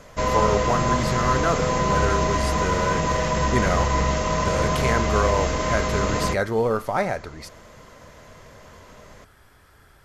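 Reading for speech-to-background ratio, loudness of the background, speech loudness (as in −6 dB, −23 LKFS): −3.5 dB, −23.0 LKFS, −26.5 LKFS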